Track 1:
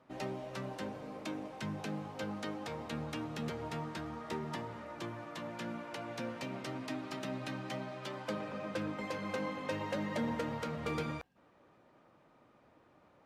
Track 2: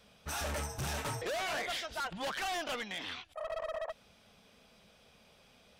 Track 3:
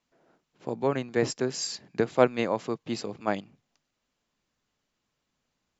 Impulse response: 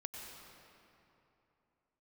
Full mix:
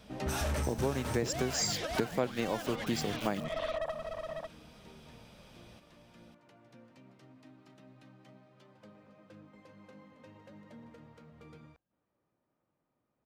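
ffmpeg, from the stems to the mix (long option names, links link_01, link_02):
-filter_complex "[0:a]volume=-0.5dB,asplit=2[link_01][link_02];[link_02]volume=-20dB[link_03];[1:a]volume=2.5dB,asplit=2[link_04][link_05];[link_05]volume=-6dB[link_06];[2:a]aeval=exprs='val(0)*gte(abs(val(0)),0.00668)':channel_layout=same,highshelf=frequency=4300:gain=10.5,volume=2dB,asplit=2[link_07][link_08];[link_08]apad=whole_len=584723[link_09];[link_01][link_09]sidechaingate=range=-33dB:threshold=-39dB:ratio=16:detection=peak[link_10];[link_03][link_06]amix=inputs=2:normalize=0,aecho=0:1:548:1[link_11];[link_10][link_04][link_07][link_11]amix=inputs=4:normalize=0,lowshelf=frequency=290:gain=8,acompressor=threshold=-30dB:ratio=4"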